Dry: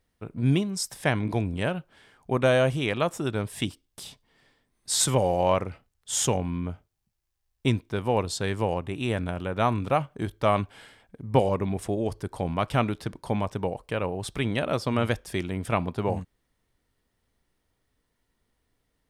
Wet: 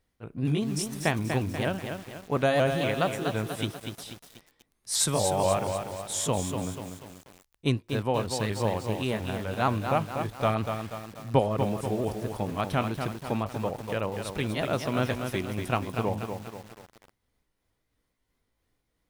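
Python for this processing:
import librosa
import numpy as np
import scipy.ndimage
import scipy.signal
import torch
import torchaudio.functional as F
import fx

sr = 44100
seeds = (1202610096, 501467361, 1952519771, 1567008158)

y = fx.pitch_ramps(x, sr, semitones=2.0, every_ms=236)
y = fx.echo_crushed(y, sr, ms=242, feedback_pct=55, bits=7, wet_db=-6.0)
y = F.gain(torch.from_numpy(y), -1.5).numpy()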